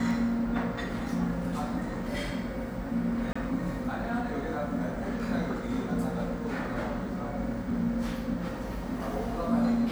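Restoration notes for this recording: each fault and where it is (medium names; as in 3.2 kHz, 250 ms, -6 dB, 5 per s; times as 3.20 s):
3.33–3.35 s: dropout 25 ms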